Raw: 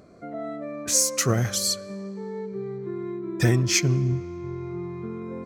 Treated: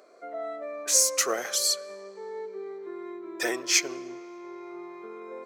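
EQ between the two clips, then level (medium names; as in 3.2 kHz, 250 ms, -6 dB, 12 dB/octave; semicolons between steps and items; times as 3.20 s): high-pass 420 Hz 24 dB/octave; 0.0 dB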